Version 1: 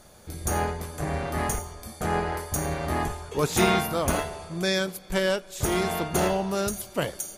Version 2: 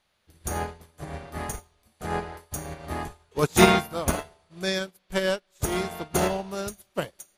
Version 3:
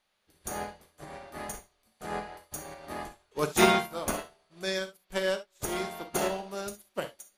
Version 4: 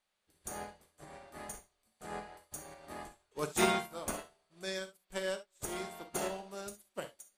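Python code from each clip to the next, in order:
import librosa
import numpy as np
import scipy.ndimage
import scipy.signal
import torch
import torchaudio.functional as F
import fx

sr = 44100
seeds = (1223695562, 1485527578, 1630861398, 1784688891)

y1 = fx.dmg_noise_band(x, sr, seeds[0], low_hz=580.0, high_hz=4400.0, level_db=-50.0)
y1 = fx.upward_expand(y1, sr, threshold_db=-39.0, expansion=2.5)
y1 = y1 * 10.0 ** (7.0 / 20.0)
y2 = fx.peak_eq(y1, sr, hz=82.0, db=-13.0, octaves=1.6)
y2 = fx.rev_gated(y2, sr, seeds[1], gate_ms=90, shape='flat', drr_db=8.0)
y2 = y2 * 10.0 ** (-4.5 / 20.0)
y3 = fx.peak_eq(y2, sr, hz=8100.0, db=9.5, octaves=0.26)
y3 = y3 * 10.0 ** (-7.5 / 20.0)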